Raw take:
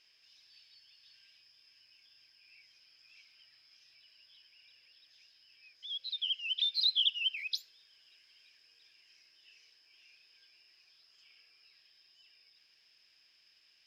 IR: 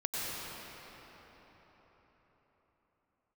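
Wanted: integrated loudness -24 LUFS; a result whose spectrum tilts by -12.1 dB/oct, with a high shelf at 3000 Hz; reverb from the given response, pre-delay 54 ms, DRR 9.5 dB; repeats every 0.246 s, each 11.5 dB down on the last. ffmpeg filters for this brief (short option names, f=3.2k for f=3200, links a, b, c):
-filter_complex "[0:a]highshelf=f=3k:g=8.5,aecho=1:1:246|492|738:0.266|0.0718|0.0194,asplit=2[a][b];[1:a]atrim=start_sample=2205,adelay=54[c];[b][c]afir=irnorm=-1:irlink=0,volume=-16dB[d];[a][d]amix=inputs=2:normalize=0,volume=2dB"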